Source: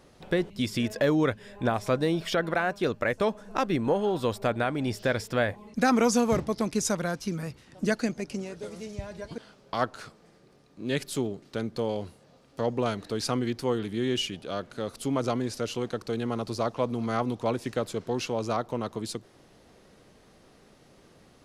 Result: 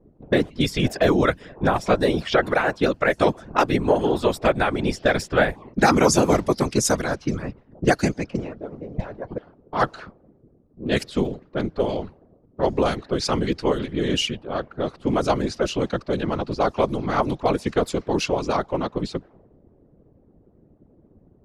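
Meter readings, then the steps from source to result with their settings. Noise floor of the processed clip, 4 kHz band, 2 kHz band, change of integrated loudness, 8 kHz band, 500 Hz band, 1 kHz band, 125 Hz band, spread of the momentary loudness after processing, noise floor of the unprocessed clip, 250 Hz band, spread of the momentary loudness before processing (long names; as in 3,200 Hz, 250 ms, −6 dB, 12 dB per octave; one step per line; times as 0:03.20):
−57 dBFS, +6.0 dB, +7.0 dB, +6.5 dB, +6.0 dB, +6.5 dB, +7.5 dB, +6.0 dB, 11 LU, −58 dBFS, +5.0 dB, 11 LU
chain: random phases in short frames
harmonic and percussive parts rebalanced percussive +8 dB
low-pass that shuts in the quiet parts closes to 330 Hz, open at −17.5 dBFS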